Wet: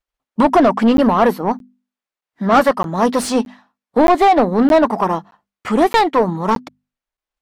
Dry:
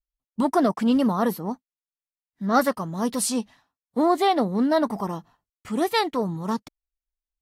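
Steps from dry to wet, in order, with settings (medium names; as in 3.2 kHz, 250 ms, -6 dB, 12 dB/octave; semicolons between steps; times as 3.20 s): hum notches 50/100/150/200/250 Hz; transient shaper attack +3 dB, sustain -3 dB; overdrive pedal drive 21 dB, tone 1.2 kHz, clips at -6.5 dBFS; crackling interface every 0.62 s, samples 512, zero, from 0.97 s; trim +4.5 dB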